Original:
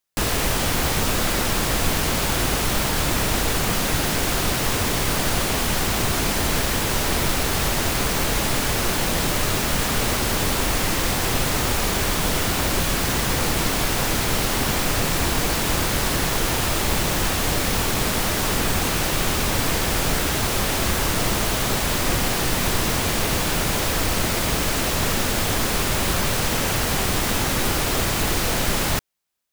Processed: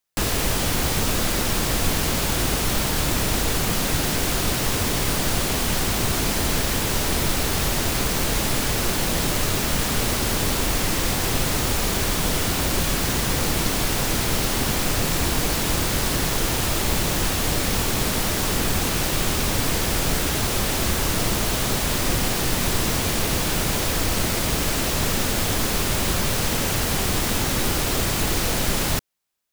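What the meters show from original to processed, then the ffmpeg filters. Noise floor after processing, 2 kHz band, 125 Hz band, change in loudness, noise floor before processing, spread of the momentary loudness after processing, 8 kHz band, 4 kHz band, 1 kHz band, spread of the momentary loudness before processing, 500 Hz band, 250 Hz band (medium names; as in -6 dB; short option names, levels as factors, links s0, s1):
-24 dBFS, -2.5 dB, 0.0 dB, -0.5 dB, -23 dBFS, 0 LU, 0.0 dB, -0.5 dB, -2.5 dB, 0 LU, -1.5 dB, 0.0 dB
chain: -filter_complex "[0:a]acrossover=split=490|3000[s0][s1][s2];[s1]acompressor=threshold=0.0398:ratio=6[s3];[s0][s3][s2]amix=inputs=3:normalize=0"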